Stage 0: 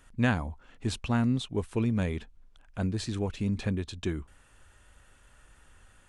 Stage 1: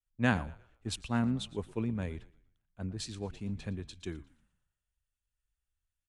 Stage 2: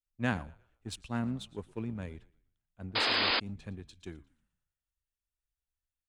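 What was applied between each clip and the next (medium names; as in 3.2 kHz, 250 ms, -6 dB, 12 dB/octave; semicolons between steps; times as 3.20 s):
frequency-shifting echo 118 ms, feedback 61%, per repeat -45 Hz, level -17 dB; three bands expanded up and down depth 100%; trim -8 dB
in parallel at -6 dB: crossover distortion -39.5 dBFS; on the sum: painted sound noise, 2.95–3.40 s, 220–5100 Hz -22 dBFS; trim -6.5 dB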